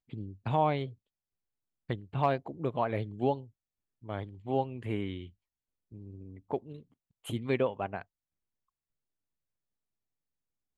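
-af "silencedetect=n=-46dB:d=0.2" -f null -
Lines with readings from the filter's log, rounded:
silence_start: 0.93
silence_end: 1.89 | silence_duration: 0.97
silence_start: 3.46
silence_end: 4.04 | silence_duration: 0.57
silence_start: 5.29
silence_end: 5.92 | silence_duration: 0.63
silence_start: 6.81
silence_end: 7.25 | silence_duration: 0.44
silence_start: 8.02
silence_end: 10.77 | silence_duration: 2.75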